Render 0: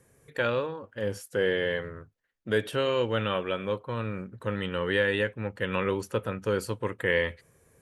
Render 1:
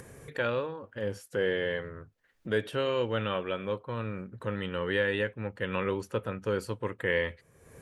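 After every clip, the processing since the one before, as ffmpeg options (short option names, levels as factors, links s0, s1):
-af "highshelf=f=6300:g=-6.5,acompressor=mode=upward:threshold=0.0224:ratio=2.5,volume=0.75"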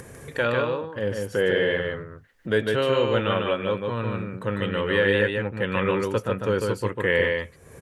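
-af "aecho=1:1:149:0.668,volume=2"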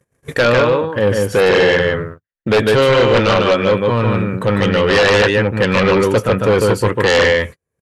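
-af "agate=range=0.00501:threshold=0.0126:ratio=16:detection=peak,aeval=exprs='0.422*sin(PI/2*3.16*val(0)/0.422)':c=same"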